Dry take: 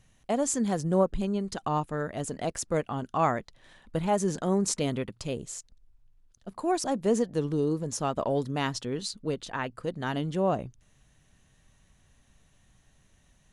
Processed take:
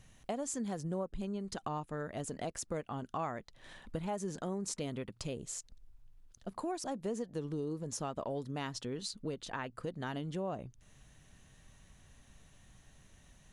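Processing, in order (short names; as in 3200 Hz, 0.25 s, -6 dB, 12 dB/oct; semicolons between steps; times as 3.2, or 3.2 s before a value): compressor 3:1, threshold -42 dBFS, peak gain reduction 17.5 dB; gain +2.5 dB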